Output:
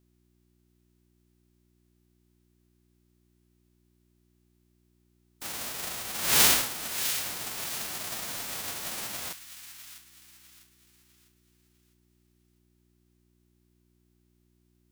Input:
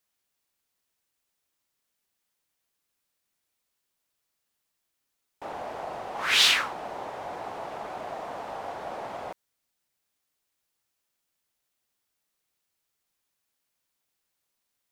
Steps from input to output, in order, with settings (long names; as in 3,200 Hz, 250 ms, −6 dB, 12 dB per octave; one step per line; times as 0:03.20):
spectral envelope flattened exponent 0.1
delay with a high-pass on its return 652 ms, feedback 37%, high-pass 1,600 Hz, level −10 dB
hum with harmonics 60 Hz, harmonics 6, −68 dBFS −3 dB per octave